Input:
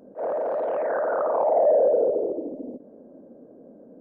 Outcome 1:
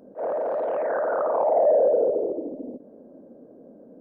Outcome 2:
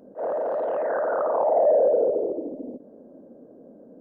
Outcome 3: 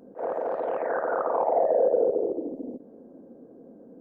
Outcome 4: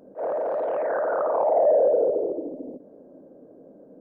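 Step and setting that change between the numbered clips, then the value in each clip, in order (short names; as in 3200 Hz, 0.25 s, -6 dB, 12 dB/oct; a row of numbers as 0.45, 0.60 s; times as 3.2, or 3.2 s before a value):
notch, frequency: 7100, 2300, 600, 230 Hz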